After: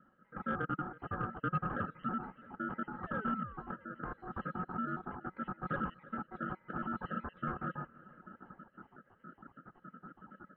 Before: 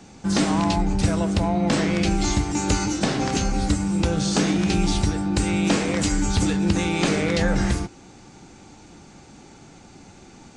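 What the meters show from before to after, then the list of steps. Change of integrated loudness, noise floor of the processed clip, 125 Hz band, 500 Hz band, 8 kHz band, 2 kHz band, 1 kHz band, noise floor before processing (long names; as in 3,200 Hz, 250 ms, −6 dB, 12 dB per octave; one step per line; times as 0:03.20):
−17.5 dB, −70 dBFS, −20.0 dB, −19.5 dB, below −40 dB, −13.5 dB, −10.0 dB, −47 dBFS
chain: time-frequency cells dropped at random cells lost 61%
high-pass filter 130 Hz 24 dB per octave
reverb reduction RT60 0.74 s
automatic gain control gain up to 15 dB
hard clipping −14.5 dBFS, distortion −9 dB
background noise blue −37 dBFS
sound drawn into the spectrogram fall, 0:02.99–0:03.77, 410–1,400 Hz −33 dBFS
formant resonators in series a
soft clipping −22.5 dBFS, distortion −21 dB
high-frequency loss of the air 270 metres
feedback echo with a band-pass in the loop 327 ms, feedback 70%, band-pass 1,400 Hz, level −18 dB
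ring modulation 550 Hz
level +1 dB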